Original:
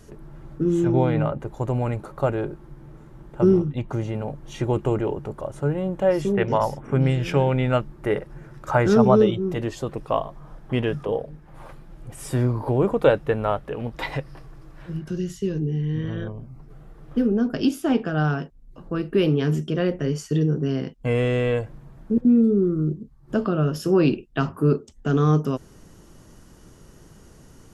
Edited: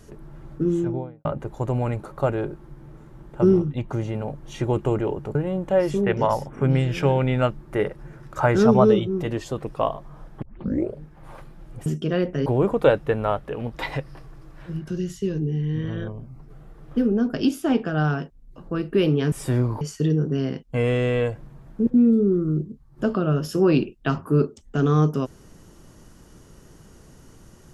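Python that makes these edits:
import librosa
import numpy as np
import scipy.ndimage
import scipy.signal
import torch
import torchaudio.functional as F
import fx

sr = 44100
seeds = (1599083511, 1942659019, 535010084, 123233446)

y = fx.studio_fade_out(x, sr, start_s=0.57, length_s=0.68)
y = fx.edit(y, sr, fx.cut(start_s=5.35, length_s=0.31),
    fx.tape_start(start_s=10.73, length_s=0.56),
    fx.swap(start_s=12.17, length_s=0.49, other_s=19.52, other_length_s=0.6), tone=tone)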